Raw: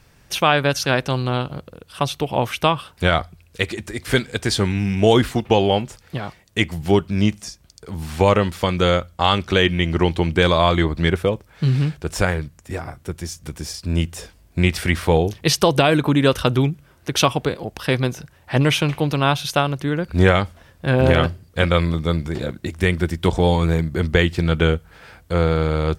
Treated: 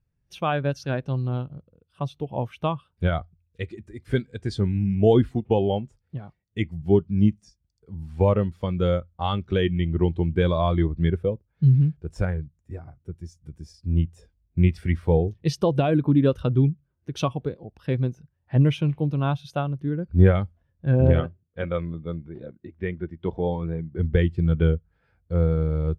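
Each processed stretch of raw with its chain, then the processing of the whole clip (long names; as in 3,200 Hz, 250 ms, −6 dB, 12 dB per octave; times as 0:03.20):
0:21.20–0:23.99: low-pass filter 3,400 Hz + low-shelf EQ 140 Hz −11.5 dB
whole clip: low-shelf EQ 410 Hz +5.5 dB; every bin expanded away from the loudest bin 1.5 to 1; level −6 dB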